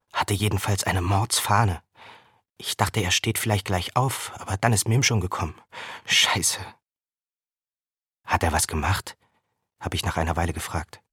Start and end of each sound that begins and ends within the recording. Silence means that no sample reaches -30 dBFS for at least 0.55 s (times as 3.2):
2.6–6.67
8.28–9.11